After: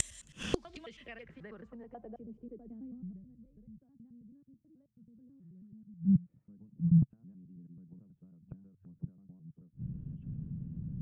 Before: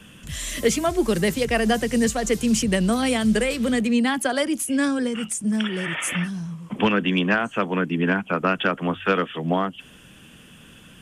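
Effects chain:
slices reordered back to front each 108 ms, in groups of 5
downward compressor 5 to 1, threshold −22 dBFS, peak gain reduction 8 dB
gate with flip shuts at −23 dBFS, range −32 dB
low-pass filter sweep 8,800 Hz → 140 Hz, 0:00.15–0:03.27
level +7.5 dB

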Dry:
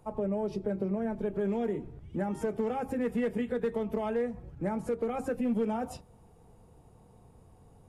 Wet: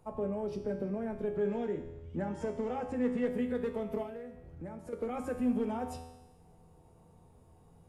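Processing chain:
0:01.36–0:03.27: low-pass filter 8,000 Hz 24 dB per octave
0:04.02–0:04.93: downward compressor 3 to 1, threshold −41 dBFS, peak gain reduction 11 dB
tuned comb filter 83 Hz, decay 1.1 s, harmonics all, mix 80%
level +8 dB

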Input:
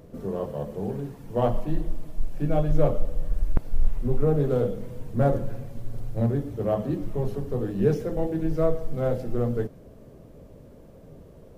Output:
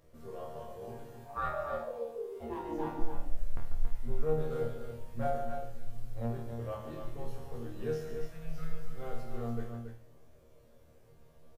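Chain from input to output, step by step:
0:01.24–0:02.99: ring modulation 730 Hz → 280 Hz
0:08.02–0:08.81: healed spectral selection 220–1,200 Hz after
parametric band 220 Hz −12.5 dB 2.7 octaves
resonators tuned to a chord D#2 fifth, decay 0.41 s
on a send: loudspeakers that aren't time-aligned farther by 49 metres −9 dB, 96 metres −7 dB
on the sum: level +5.5 dB

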